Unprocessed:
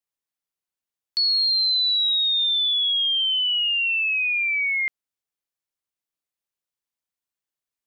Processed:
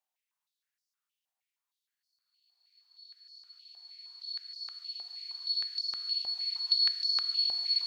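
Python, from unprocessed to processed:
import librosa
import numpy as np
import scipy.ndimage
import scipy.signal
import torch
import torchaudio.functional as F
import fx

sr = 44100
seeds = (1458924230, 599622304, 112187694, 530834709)

y = fx.paulstretch(x, sr, seeds[0], factor=36.0, window_s=0.5, from_s=0.87)
y = fx.filter_held_highpass(y, sr, hz=6.4, low_hz=750.0, high_hz=5000.0)
y = y * 10.0 ** (-2.5 / 20.0)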